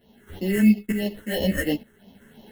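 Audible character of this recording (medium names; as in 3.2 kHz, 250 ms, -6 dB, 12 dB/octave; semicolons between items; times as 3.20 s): aliases and images of a low sample rate 2.4 kHz, jitter 0%; phasing stages 4, 3 Hz, lowest notch 730–1500 Hz; tremolo saw up 1.1 Hz, depth 75%; a shimmering, thickened sound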